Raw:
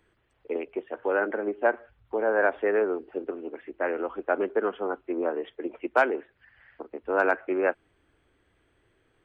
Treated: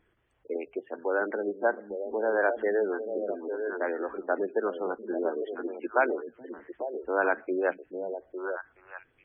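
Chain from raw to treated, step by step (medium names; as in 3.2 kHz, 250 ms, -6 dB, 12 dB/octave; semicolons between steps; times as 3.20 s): repeats whose band climbs or falls 425 ms, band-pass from 180 Hz, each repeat 1.4 oct, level -3 dB; vibrato 0.47 Hz 9.5 cents; spectral gate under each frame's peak -25 dB strong; trim -2.5 dB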